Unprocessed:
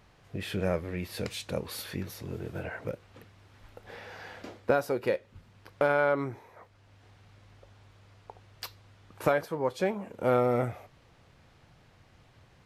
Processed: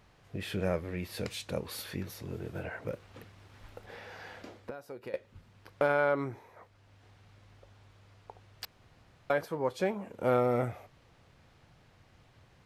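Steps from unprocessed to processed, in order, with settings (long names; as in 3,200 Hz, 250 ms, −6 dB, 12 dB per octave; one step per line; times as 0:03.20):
0:02.91–0:03.86: leveller curve on the samples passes 1
0:04.41–0:05.14: downward compressor 4 to 1, threshold −41 dBFS, peak gain reduction 17.5 dB
0:08.65–0:09.30: fill with room tone
level −2 dB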